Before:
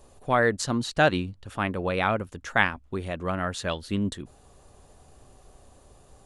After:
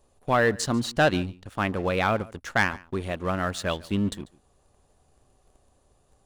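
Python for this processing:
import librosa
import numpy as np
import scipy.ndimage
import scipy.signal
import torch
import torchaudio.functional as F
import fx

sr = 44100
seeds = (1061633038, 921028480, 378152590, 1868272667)

p1 = fx.leveller(x, sr, passes=2)
p2 = p1 + fx.echo_single(p1, sr, ms=143, db=-22.5, dry=0)
y = p2 * 10.0 ** (-6.0 / 20.0)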